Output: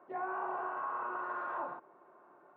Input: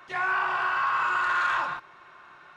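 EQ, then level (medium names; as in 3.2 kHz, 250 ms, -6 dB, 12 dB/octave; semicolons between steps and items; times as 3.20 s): Butterworth band-pass 420 Hz, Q 0.86; 0.0 dB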